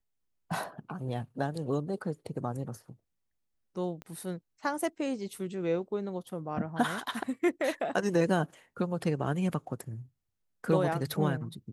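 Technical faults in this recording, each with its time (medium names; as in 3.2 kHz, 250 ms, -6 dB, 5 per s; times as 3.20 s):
4.02 s: pop -29 dBFS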